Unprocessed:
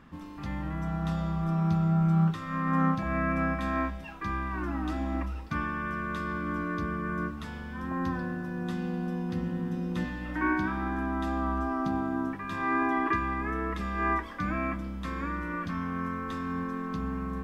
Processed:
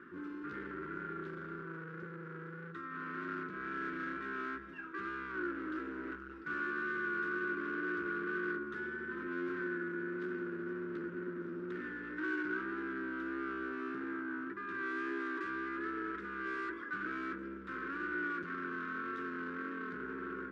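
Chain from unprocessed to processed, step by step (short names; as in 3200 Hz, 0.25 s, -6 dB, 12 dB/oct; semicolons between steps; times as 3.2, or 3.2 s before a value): vocal rider within 5 dB 2 s; hard clip -35.5 dBFS, distortion -6 dB; wow and flutter 28 cents; tempo 0.85×; double band-pass 730 Hz, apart 2 oct; gain +8 dB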